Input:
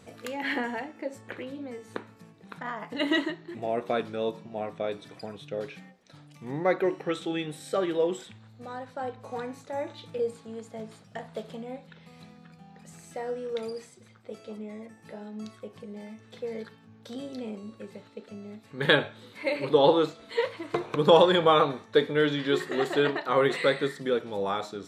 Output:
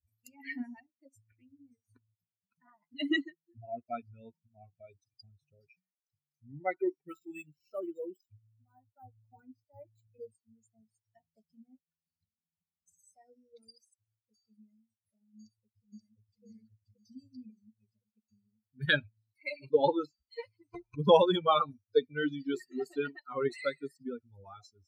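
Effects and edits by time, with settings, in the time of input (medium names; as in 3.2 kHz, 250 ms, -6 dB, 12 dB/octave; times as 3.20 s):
7.00–10.32 s: decimation joined by straight lines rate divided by 4×
15.39–16.44 s: echo throw 530 ms, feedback 70%, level -1 dB
whole clip: expander on every frequency bin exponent 3; tone controls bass +3 dB, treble -4 dB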